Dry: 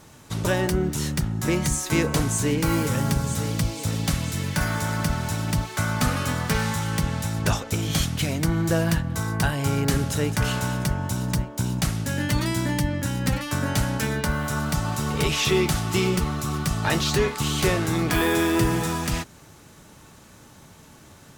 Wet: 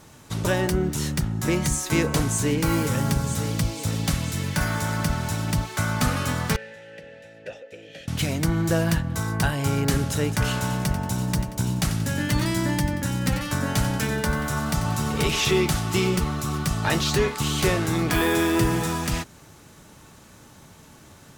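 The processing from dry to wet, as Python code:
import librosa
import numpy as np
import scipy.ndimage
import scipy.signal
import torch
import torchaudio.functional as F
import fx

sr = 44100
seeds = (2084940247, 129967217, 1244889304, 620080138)

y = fx.vowel_filter(x, sr, vowel='e', at=(6.56, 8.08))
y = fx.echo_feedback(y, sr, ms=91, feedback_pct=43, wet_db=-11.0, at=(10.55, 15.51))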